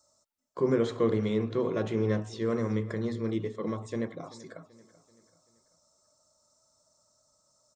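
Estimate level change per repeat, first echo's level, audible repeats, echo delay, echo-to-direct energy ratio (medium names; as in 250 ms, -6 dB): -6.5 dB, -19.0 dB, 3, 385 ms, -18.0 dB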